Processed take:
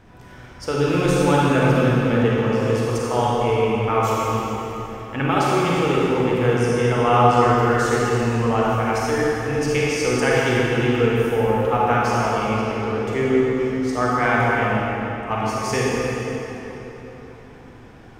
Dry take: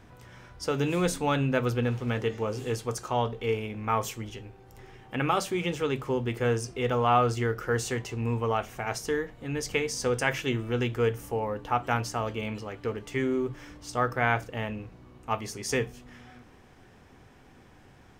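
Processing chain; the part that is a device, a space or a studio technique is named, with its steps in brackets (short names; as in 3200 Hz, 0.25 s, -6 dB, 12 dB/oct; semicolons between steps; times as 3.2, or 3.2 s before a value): swimming-pool hall (reverb RT60 3.8 s, pre-delay 33 ms, DRR -6 dB; high shelf 4900 Hz -5.5 dB); gain +3 dB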